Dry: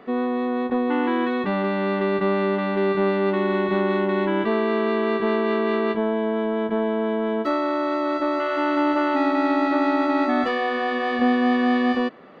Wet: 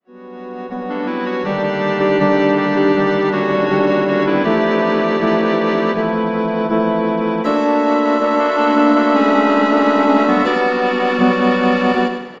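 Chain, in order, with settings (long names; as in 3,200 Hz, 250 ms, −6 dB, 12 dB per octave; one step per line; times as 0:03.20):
fade in at the beginning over 1.99 s
feedback echo with a high-pass in the loop 150 ms, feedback 59%, high-pass 740 Hz, level −15 dB
pitch-shifted copies added −5 semitones −11 dB, −4 semitones −9 dB, +7 semitones −10 dB
repeating echo 99 ms, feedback 37%, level −7 dB
level +5 dB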